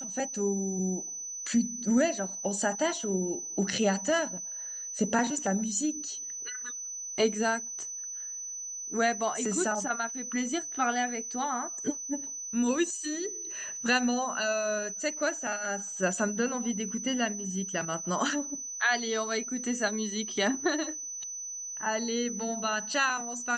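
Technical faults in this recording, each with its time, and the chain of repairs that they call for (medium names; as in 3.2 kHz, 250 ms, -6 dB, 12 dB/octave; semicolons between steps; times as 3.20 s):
whine 6 kHz -36 dBFS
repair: band-stop 6 kHz, Q 30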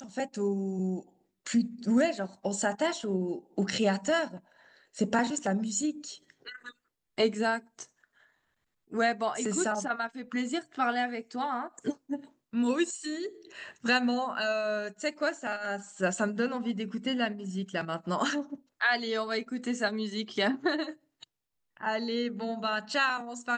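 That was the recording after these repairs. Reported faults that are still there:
nothing left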